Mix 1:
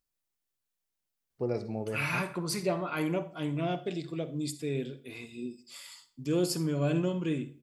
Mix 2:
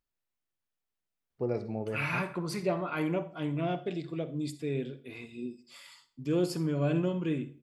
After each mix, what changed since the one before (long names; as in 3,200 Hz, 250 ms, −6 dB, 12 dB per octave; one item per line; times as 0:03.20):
master: add bass and treble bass 0 dB, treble −9 dB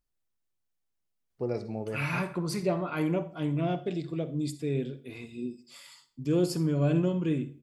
second voice: add spectral tilt −1.5 dB per octave
master: add bass and treble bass 0 dB, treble +9 dB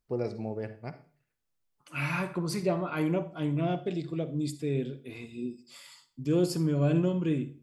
first voice: entry −1.30 s